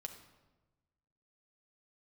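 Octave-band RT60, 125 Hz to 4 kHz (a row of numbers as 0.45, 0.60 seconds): 1.6, 1.4, 1.2, 1.1, 0.90, 0.80 seconds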